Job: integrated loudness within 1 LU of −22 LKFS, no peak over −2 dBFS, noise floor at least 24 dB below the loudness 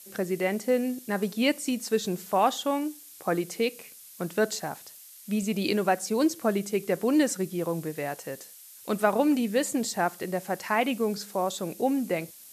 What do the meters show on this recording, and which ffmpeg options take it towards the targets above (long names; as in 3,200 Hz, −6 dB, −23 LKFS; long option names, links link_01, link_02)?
background noise floor −49 dBFS; target noise floor −52 dBFS; integrated loudness −28.0 LKFS; sample peak −9.5 dBFS; target loudness −22.0 LKFS
→ -af "afftdn=noise_reduction=6:noise_floor=-49"
-af "volume=6dB"